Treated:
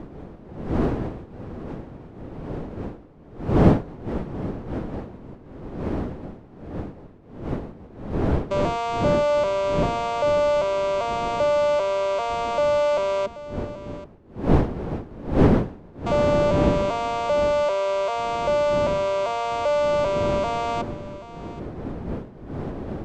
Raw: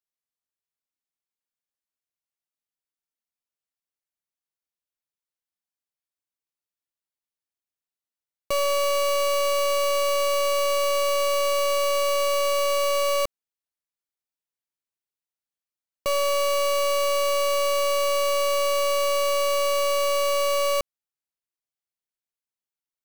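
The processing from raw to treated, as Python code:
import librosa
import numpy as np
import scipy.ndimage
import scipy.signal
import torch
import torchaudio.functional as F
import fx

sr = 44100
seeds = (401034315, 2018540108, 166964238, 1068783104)

p1 = fx.vocoder_arp(x, sr, chord='minor triad', root=55, every_ms=393)
p2 = fx.dmg_wind(p1, sr, seeds[0], corner_hz=340.0, level_db=-29.0)
p3 = 10.0 ** (-17.0 / 20.0) * np.tanh(p2 / 10.0 ** (-17.0 / 20.0))
p4 = p2 + (p3 * librosa.db_to_amplitude(-7.0))
p5 = p4 + 10.0 ** (-16.0 / 20.0) * np.pad(p4, (int(781 * sr / 1000.0), 0))[:len(p4)]
y = p5 * librosa.db_to_amplitude(-1.0)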